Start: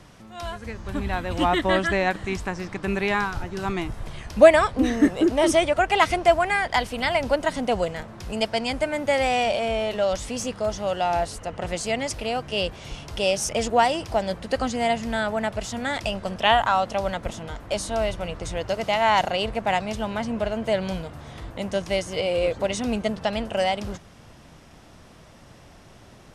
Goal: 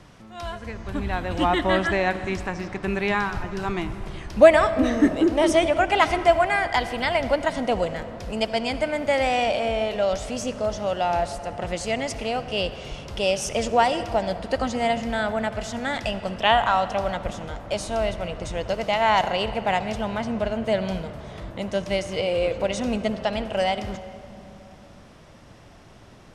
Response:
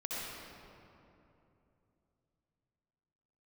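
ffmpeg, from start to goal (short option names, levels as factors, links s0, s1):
-filter_complex "[0:a]highshelf=f=8400:g=-7.5,asplit=2[s0][s1];[1:a]atrim=start_sample=2205[s2];[s1][s2]afir=irnorm=-1:irlink=0,volume=0.211[s3];[s0][s3]amix=inputs=2:normalize=0,volume=0.891"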